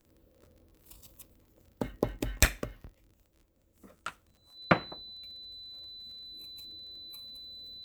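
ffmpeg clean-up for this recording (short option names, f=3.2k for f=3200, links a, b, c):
-af "adeclick=t=4,bandreject=f=4k:w=30"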